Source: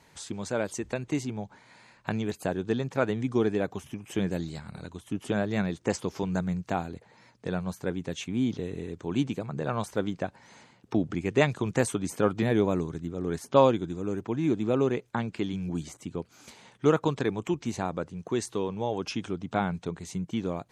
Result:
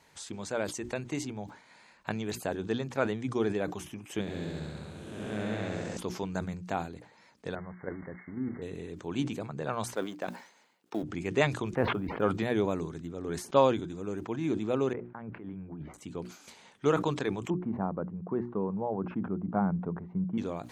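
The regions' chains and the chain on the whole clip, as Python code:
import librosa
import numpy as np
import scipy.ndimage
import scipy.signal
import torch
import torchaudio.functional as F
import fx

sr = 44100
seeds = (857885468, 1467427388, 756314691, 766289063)

y = fx.chain(x, sr, fx.spec_blur(span_ms=374.0),
    fx.room_flutter(wall_m=11.3, rt60_s=1.4), at=(4.21, 5.97))
y = fx.chain(y, sr, fx.crossing_spikes(level_db=-23.0),
    fx.brickwall_lowpass(high_hz=2200.0),
    fx.level_steps(step_db=9), at=(7.55, 8.62))
y = fx.chain(y, sr, fx.law_mismatch(coded='A'),
    fx.highpass(hz=260.0, slope=12), at=(9.95, 11.03))
y = fx.chain(y, sr, fx.gaussian_blur(sigma=4.0),
    fx.quant_float(bits=6),
    fx.sustainer(db_per_s=61.0), at=(11.75, 12.22))
y = fx.chain(y, sr, fx.lowpass(hz=1700.0, slope=24),
    fx.over_compress(threshold_db=-36.0, ratio=-1.0), at=(14.93, 15.94))
y = fx.chain(y, sr, fx.lowpass(hz=1300.0, slope=24),
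    fx.peak_eq(hz=190.0, db=9.5, octaves=0.55), at=(17.5, 20.38))
y = fx.low_shelf(y, sr, hz=340.0, db=-4.0)
y = fx.hum_notches(y, sr, base_hz=60, count=6)
y = fx.sustainer(y, sr, db_per_s=110.0)
y = y * 10.0 ** (-2.0 / 20.0)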